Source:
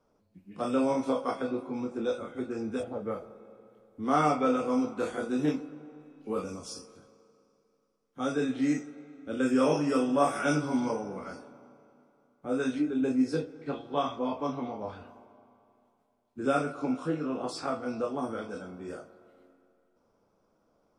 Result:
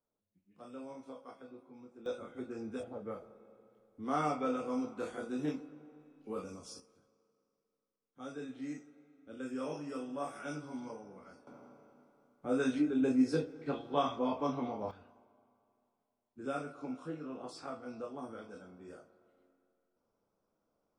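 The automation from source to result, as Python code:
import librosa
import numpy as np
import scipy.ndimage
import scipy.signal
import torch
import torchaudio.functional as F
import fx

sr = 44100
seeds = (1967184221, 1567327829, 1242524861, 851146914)

y = fx.gain(x, sr, db=fx.steps((0.0, -20.0), (2.06, -8.0), (6.8, -14.5), (11.47, -2.0), (14.91, -11.0)))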